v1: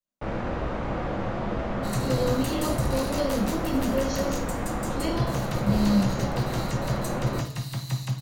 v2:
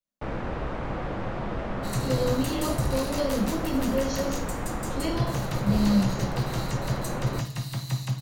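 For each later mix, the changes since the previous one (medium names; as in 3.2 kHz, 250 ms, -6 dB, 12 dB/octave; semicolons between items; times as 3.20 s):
first sound: send -7.0 dB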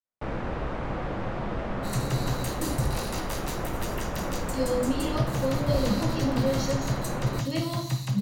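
speech: entry +2.50 s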